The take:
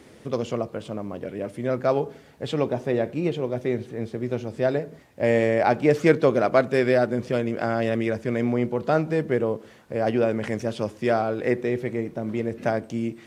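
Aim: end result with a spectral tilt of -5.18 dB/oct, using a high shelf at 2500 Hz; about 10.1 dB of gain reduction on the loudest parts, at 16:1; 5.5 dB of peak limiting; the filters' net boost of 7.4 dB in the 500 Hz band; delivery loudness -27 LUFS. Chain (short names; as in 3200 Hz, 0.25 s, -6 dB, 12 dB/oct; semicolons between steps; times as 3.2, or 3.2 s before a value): bell 500 Hz +9 dB; high shelf 2500 Hz -4 dB; compressor 16:1, threshold -15 dBFS; gain -3 dB; limiter -16.5 dBFS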